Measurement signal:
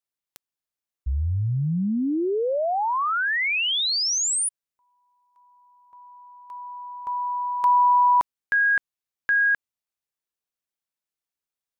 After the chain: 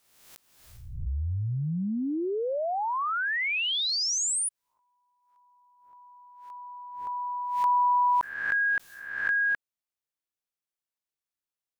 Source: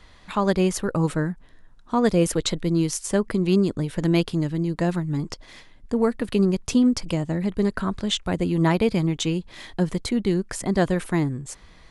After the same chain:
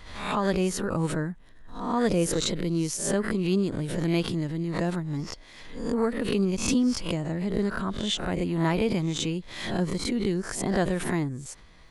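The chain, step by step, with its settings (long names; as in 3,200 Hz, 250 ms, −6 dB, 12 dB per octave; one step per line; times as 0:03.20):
peak hold with a rise ahead of every peak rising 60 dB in 0.35 s
background raised ahead of every attack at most 60 dB per second
level −5.5 dB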